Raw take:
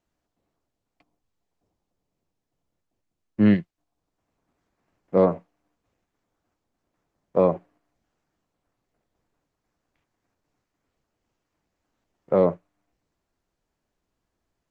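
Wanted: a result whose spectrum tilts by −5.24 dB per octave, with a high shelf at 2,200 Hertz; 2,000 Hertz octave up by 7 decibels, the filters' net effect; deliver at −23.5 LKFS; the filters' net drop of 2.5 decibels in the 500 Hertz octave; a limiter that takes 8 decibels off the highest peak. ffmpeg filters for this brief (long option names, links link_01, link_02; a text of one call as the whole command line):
ffmpeg -i in.wav -af "equalizer=frequency=500:width_type=o:gain=-3.5,equalizer=frequency=2000:width_type=o:gain=4.5,highshelf=frequency=2200:gain=7.5,volume=6.5dB,alimiter=limit=-9dB:level=0:latency=1" out.wav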